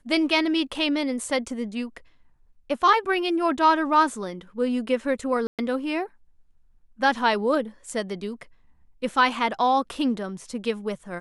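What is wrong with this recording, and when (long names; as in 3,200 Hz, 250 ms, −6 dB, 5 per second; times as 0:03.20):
0:05.47–0:05.59: drop-out 117 ms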